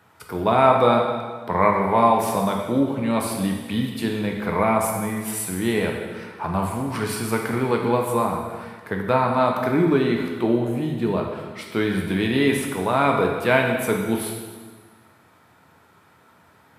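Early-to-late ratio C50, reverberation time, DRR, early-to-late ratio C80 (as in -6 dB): 3.5 dB, 1.5 s, 0.5 dB, 5.0 dB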